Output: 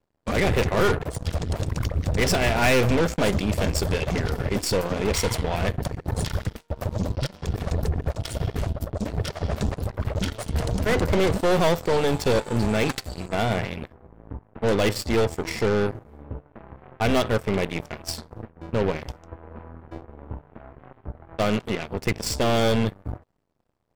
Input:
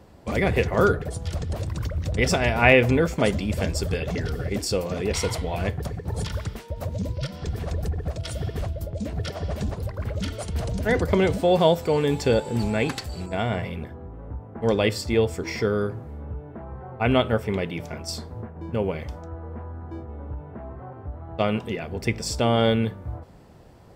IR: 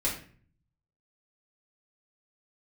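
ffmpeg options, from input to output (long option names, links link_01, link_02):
-af "asoftclip=type=tanh:threshold=-18.5dB,aeval=exprs='0.119*(cos(1*acos(clip(val(0)/0.119,-1,1)))-cos(1*PI/2))+0.0376*(cos(2*acos(clip(val(0)/0.119,-1,1)))-cos(2*PI/2))+0.0168*(cos(7*acos(clip(val(0)/0.119,-1,1)))-cos(7*PI/2))':channel_layout=same,volume=2.5dB"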